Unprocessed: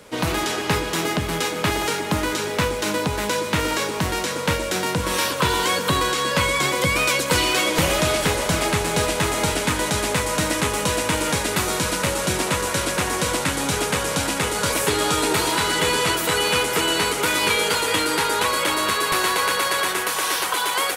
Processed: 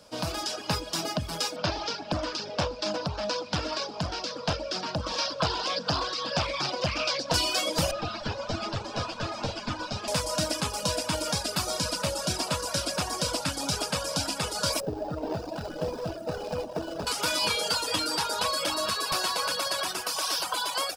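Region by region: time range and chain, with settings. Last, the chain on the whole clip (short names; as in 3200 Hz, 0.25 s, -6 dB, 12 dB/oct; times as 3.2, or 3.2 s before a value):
1.56–7.34 Chebyshev low-pass 5100 Hz, order 3 + Doppler distortion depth 0.89 ms
7.91–10.08 minimum comb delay 8.9 ms + air absorption 170 m
14.8–17.07 median filter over 41 samples + bell 700 Hz +5 dB 1.6 oct
whole clip: reverb removal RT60 1.5 s; thirty-one-band EQ 400 Hz -9 dB, 630 Hz +7 dB, 2000 Hz -11 dB, 5000 Hz +12 dB, 12500 Hz -4 dB; AGC gain up to 3.5 dB; gain -8.5 dB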